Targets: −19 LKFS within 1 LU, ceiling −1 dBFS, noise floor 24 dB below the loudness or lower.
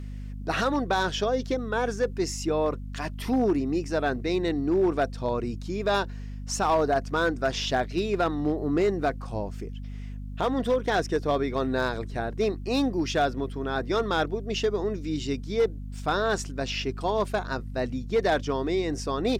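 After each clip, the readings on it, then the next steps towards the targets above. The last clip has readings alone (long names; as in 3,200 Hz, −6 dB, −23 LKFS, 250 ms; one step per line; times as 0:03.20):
share of clipped samples 0.6%; peaks flattened at −17.0 dBFS; mains hum 50 Hz; hum harmonics up to 250 Hz; level of the hum −34 dBFS; integrated loudness −27.5 LKFS; sample peak −17.0 dBFS; target loudness −19.0 LKFS
→ clipped peaks rebuilt −17 dBFS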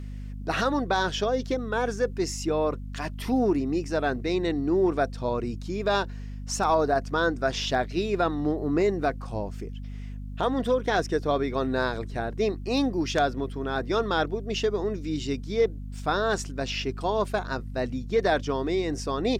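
share of clipped samples 0.0%; mains hum 50 Hz; hum harmonics up to 250 Hz; level of the hum −34 dBFS
→ hum removal 50 Hz, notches 5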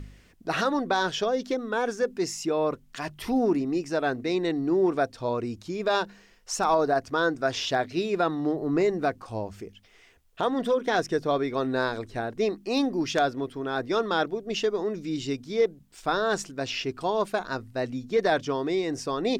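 mains hum none found; integrated loudness −27.5 LKFS; sample peak −8.0 dBFS; target loudness −19.0 LKFS
→ level +8.5 dB
brickwall limiter −1 dBFS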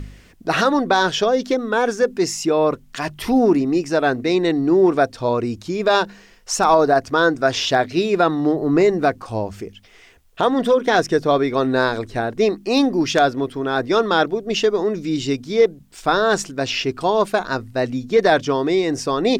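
integrated loudness −19.0 LKFS; sample peak −1.0 dBFS; background noise floor −49 dBFS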